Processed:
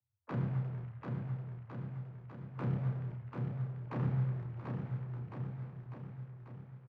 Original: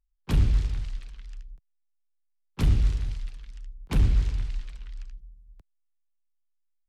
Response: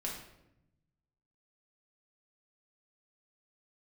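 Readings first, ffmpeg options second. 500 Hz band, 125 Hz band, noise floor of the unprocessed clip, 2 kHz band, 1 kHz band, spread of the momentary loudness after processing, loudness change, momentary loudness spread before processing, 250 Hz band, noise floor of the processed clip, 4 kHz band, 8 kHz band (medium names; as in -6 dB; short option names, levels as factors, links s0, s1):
-2.0 dB, -5.5 dB, -73 dBFS, -8.0 dB, -1.0 dB, 12 LU, -12.0 dB, 22 LU, -3.5 dB, -56 dBFS, under -20 dB, no reading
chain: -filter_complex "[0:a]acrossover=split=460 2100:gain=0.158 1 0.0794[s0][s1][s2];[s0][s1][s2]amix=inputs=3:normalize=0,acrossover=split=370[s3][s4];[s4]acompressor=threshold=0.00708:ratio=2[s5];[s3][s5]amix=inputs=2:normalize=0,afreqshift=81,asplit=2[s6][s7];[s7]aeval=exprs='(mod(94.4*val(0)+1,2)-1)/94.4':c=same,volume=0.335[s8];[s6][s8]amix=inputs=2:normalize=0,adynamicsmooth=sensitivity=3:basefreq=1100,asplit=2[s9][s10];[s10]adelay=31,volume=0.562[s11];[s9][s11]amix=inputs=2:normalize=0,asplit=2[s12][s13];[s13]aecho=0:1:740|1406|2005|2545|3030:0.631|0.398|0.251|0.158|0.1[s14];[s12][s14]amix=inputs=2:normalize=0"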